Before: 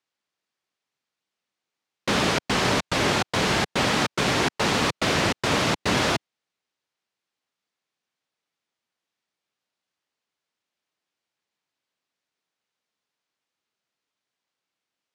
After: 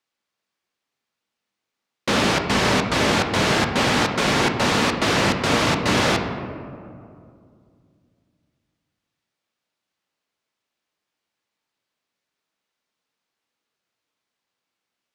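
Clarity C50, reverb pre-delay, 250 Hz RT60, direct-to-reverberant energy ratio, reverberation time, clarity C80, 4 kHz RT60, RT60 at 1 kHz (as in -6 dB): 6.0 dB, 3 ms, 2.8 s, 4.0 dB, 2.4 s, 7.5 dB, 1.0 s, 2.2 s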